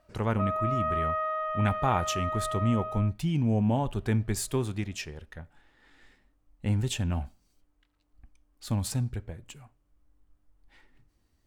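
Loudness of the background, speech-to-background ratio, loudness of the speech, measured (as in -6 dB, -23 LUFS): -32.0 LUFS, 2.0 dB, -30.0 LUFS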